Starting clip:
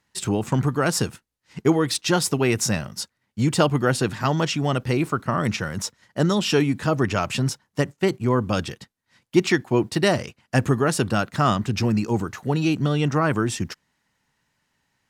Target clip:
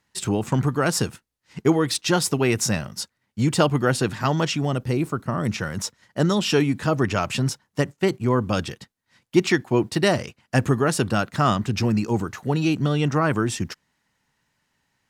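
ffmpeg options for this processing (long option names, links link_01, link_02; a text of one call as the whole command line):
ffmpeg -i in.wav -filter_complex "[0:a]asettb=1/sr,asplit=3[link_01][link_02][link_03];[link_01]atrim=end=4.654[link_04];[link_02]atrim=start=4.65:end=5.56,asetpts=PTS-STARTPTS,afade=type=in:duration=0.004:curve=qsin,afade=type=out:start_time=0.906:duration=0.004:curve=qsin,equalizer=frequency=2100:width=0.36:gain=-6[link_05];[link_03]atrim=start=5.556[link_06];[link_04][link_05]acrossfade=duration=0.004:curve1=hsin:curve2=qsin[link_07];[link_07][link_06]acrossfade=duration=0.004:curve1=qsin:curve2=hsin" out.wav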